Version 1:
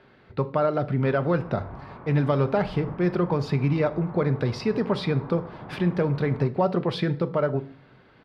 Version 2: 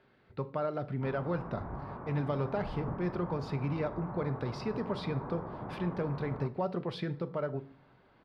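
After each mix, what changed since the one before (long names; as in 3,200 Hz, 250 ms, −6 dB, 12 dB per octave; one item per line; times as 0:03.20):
speech −10.5 dB
background: add low-pass filter 1,700 Hz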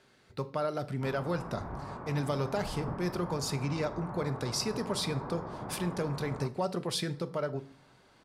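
master: remove high-frequency loss of the air 370 metres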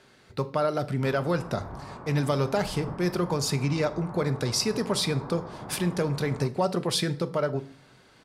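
speech +6.5 dB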